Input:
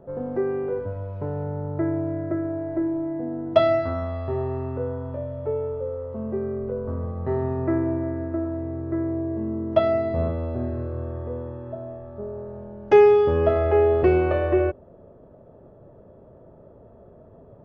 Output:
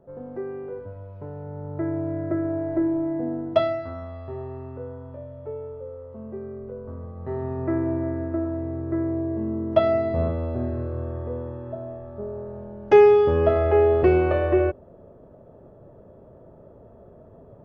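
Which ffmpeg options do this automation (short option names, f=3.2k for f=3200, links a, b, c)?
-af "volume=10dB,afade=t=in:st=1.42:d=1.14:silence=0.334965,afade=t=out:st=3.29:d=0.46:silence=0.334965,afade=t=in:st=7.12:d=0.95:silence=0.398107"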